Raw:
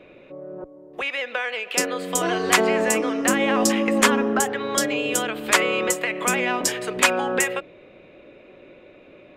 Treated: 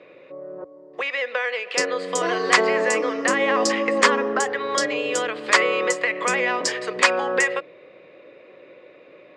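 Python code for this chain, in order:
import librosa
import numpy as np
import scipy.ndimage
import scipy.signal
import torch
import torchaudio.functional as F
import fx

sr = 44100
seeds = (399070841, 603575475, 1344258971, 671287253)

y = fx.cabinet(x, sr, low_hz=150.0, low_slope=12, high_hz=7900.0, hz=(230.0, 500.0, 1100.0, 1900.0, 4700.0), db=(-6, 8, 7, 8, 8))
y = y * librosa.db_to_amplitude(-3.0)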